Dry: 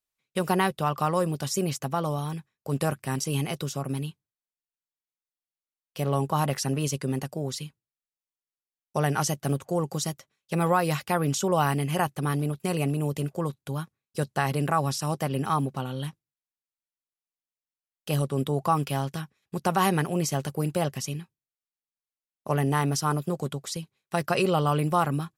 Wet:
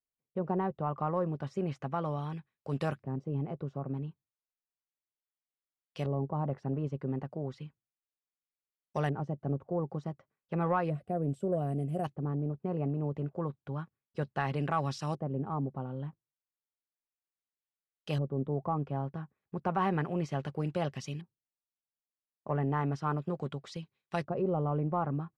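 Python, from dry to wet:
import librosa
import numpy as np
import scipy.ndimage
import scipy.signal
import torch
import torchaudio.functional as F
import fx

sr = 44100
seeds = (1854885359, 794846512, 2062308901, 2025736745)

y = fx.spec_box(x, sr, start_s=10.9, length_s=1.15, low_hz=750.0, high_hz=7500.0, gain_db=-21)
y = 10.0 ** (-11.5 / 20.0) * np.tanh(y / 10.0 ** (-11.5 / 20.0))
y = fx.filter_lfo_lowpass(y, sr, shape='saw_up', hz=0.33, low_hz=560.0, high_hz=4500.0, q=0.78)
y = y * 10.0 ** (-5.5 / 20.0)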